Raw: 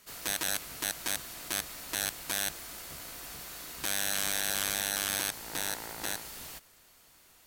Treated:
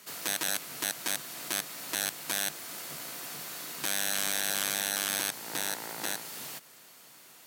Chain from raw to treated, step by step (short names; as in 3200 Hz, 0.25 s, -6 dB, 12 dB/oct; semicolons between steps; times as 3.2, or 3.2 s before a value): HPF 130 Hz 24 dB/oct; in parallel at +0.5 dB: compressor, threshold -48 dBFS, peak gain reduction 21 dB